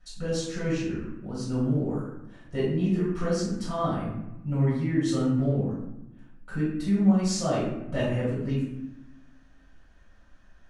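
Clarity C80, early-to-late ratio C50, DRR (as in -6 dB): 4.5 dB, 0.5 dB, -10.0 dB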